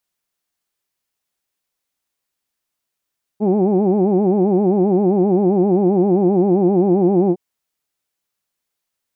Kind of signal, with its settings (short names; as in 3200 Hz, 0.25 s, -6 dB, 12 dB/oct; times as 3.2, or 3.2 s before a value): formant vowel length 3.96 s, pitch 198 Hz, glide -1 st, vibrato 7.6 Hz, vibrato depth 1.5 st, F1 330 Hz, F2 790 Hz, F3 2400 Hz